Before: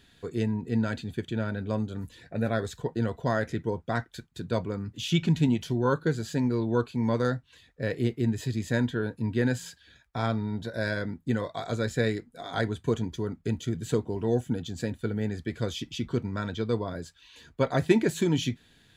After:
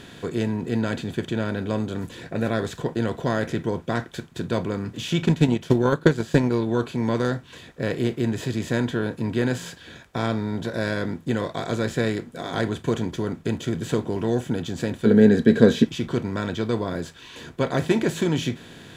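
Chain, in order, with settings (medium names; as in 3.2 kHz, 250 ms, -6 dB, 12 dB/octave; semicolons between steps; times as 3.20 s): spectral levelling over time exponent 0.6; 5.25–6.71 s: transient shaper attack +11 dB, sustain -7 dB; 15.05–15.84 s: small resonant body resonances 230/430/1600/3900 Hz, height 14 dB -> 17 dB, ringing for 35 ms; trim -1 dB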